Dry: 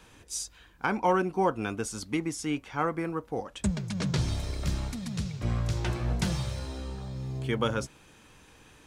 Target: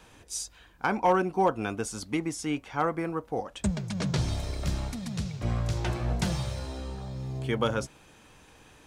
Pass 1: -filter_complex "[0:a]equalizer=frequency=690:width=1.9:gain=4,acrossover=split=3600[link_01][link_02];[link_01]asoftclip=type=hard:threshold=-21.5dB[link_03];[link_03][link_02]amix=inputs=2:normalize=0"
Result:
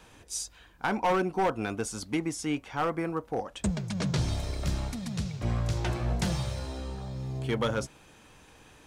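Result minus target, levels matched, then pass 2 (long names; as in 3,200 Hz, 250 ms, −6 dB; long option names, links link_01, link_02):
hard clipping: distortion +17 dB
-filter_complex "[0:a]equalizer=frequency=690:width=1.9:gain=4,acrossover=split=3600[link_01][link_02];[link_01]asoftclip=type=hard:threshold=-14dB[link_03];[link_03][link_02]amix=inputs=2:normalize=0"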